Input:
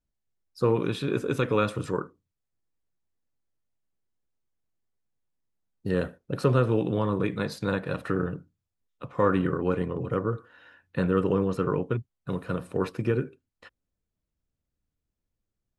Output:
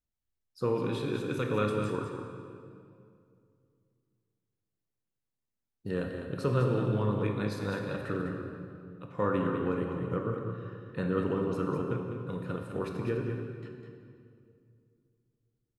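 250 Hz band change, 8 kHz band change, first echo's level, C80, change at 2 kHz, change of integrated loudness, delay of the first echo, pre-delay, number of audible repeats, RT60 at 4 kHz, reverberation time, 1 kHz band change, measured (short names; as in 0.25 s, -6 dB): -4.0 dB, n/a, -7.0 dB, 3.0 dB, -4.5 dB, -4.5 dB, 0.203 s, 18 ms, 1, 1.7 s, 2.4 s, -4.5 dB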